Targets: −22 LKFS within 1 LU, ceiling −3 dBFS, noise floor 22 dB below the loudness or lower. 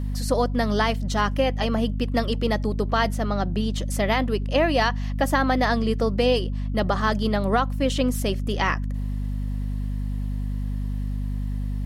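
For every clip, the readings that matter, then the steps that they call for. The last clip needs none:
mains hum 50 Hz; hum harmonics up to 250 Hz; level of the hum −24 dBFS; integrated loudness −24.5 LKFS; sample peak −8.5 dBFS; target loudness −22.0 LKFS
→ mains-hum notches 50/100/150/200/250 Hz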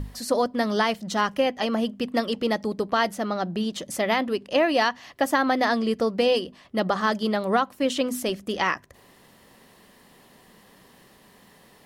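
mains hum none found; integrated loudness −25.0 LKFS; sample peak −9.5 dBFS; target loudness −22.0 LKFS
→ level +3 dB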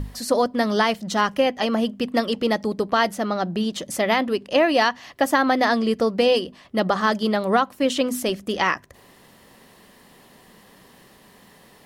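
integrated loudness −22.0 LKFS; sample peak −6.5 dBFS; background noise floor −52 dBFS

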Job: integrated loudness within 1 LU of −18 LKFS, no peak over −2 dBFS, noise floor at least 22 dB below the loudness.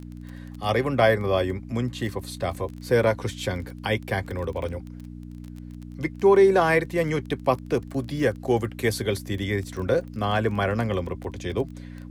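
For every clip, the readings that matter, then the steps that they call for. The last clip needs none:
crackle rate 20 per second; mains hum 60 Hz; hum harmonics up to 300 Hz; level of the hum −36 dBFS; integrated loudness −25.0 LKFS; sample peak −6.5 dBFS; target loudness −18.0 LKFS
→ click removal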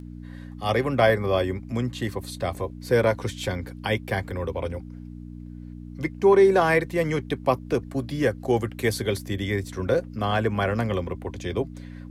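crackle rate 0.33 per second; mains hum 60 Hz; hum harmonics up to 300 Hz; level of the hum −36 dBFS
→ hum removal 60 Hz, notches 5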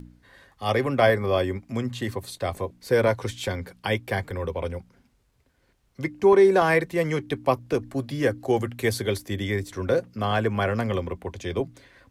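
mains hum none found; integrated loudness −25.0 LKFS; sample peak −6.5 dBFS; target loudness −18.0 LKFS
→ level +7 dB
brickwall limiter −2 dBFS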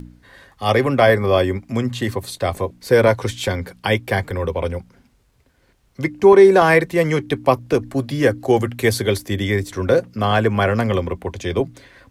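integrated loudness −18.5 LKFS; sample peak −2.0 dBFS; background noise floor −59 dBFS

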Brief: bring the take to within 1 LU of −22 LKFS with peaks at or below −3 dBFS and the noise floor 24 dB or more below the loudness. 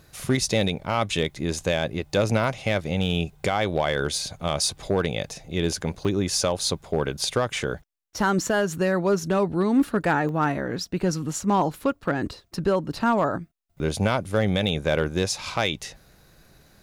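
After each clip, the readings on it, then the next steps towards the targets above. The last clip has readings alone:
share of clipped samples 0.4%; peaks flattened at −13.0 dBFS; number of dropouts 4; longest dropout 1.1 ms; integrated loudness −25.0 LKFS; sample peak −13.0 dBFS; target loudness −22.0 LKFS
→ clipped peaks rebuilt −13 dBFS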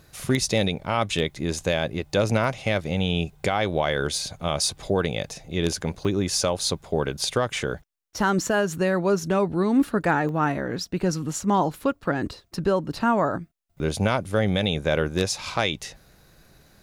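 share of clipped samples 0.0%; number of dropouts 4; longest dropout 1.1 ms
→ repair the gap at 0:02.44/0:06.05/0:10.29/0:12.55, 1.1 ms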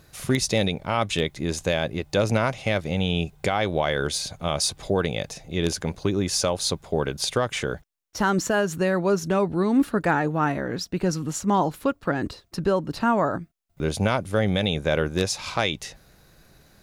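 number of dropouts 0; integrated loudness −25.0 LKFS; sample peak −5.0 dBFS; target loudness −22.0 LKFS
→ level +3 dB
brickwall limiter −3 dBFS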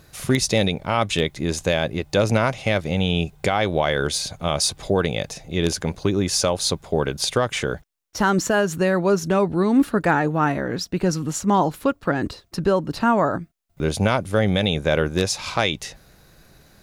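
integrated loudness −22.0 LKFS; sample peak −3.0 dBFS; background noise floor −55 dBFS

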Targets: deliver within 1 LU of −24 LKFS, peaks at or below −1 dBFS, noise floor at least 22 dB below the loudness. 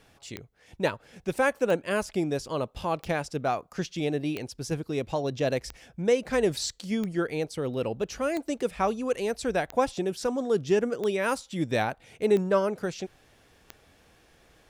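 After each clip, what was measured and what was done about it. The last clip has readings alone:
number of clicks 11; integrated loudness −28.5 LKFS; sample peak −11.5 dBFS; target loudness −24.0 LKFS
→ click removal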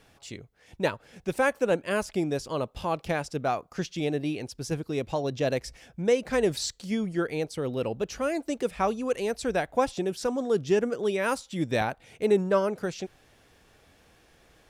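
number of clicks 0; integrated loudness −28.5 LKFS; sample peak −11.5 dBFS; target loudness −24.0 LKFS
→ level +4.5 dB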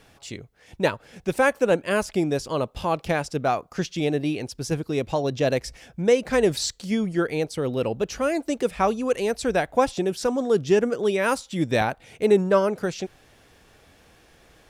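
integrated loudness −24.0 LKFS; sample peak −7.0 dBFS; background noise floor −56 dBFS

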